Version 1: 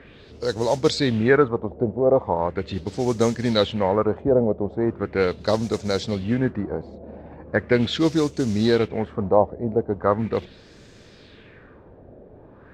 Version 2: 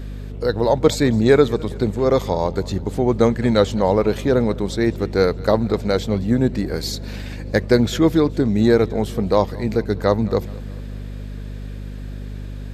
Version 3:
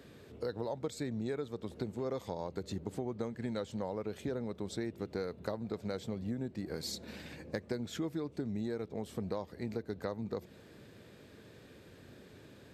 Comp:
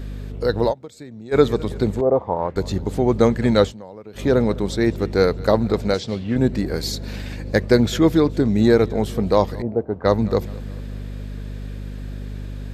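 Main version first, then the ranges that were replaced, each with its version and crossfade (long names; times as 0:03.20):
2
0:00.71–0:01.34: punch in from 3, crossfade 0.06 s
0:02.01–0:02.56: punch in from 1
0:03.69–0:04.18: punch in from 3, crossfade 0.10 s
0:05.94–0:06.36: punch in from 1
0:09.62–0:10.05: punch in from 1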